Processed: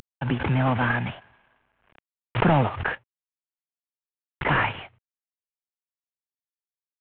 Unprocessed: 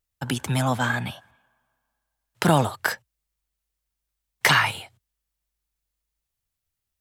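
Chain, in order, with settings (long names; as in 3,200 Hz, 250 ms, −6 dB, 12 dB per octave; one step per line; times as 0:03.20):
variable-slope delta modulation 16 kbit/s
background raised ahead of every attack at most 81 dB per second
level +2 dB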